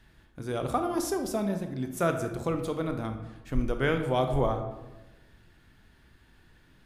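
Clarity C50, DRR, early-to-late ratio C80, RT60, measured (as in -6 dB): 8.0 dB, 6.0 dB, 10.5 dB, 1.1 s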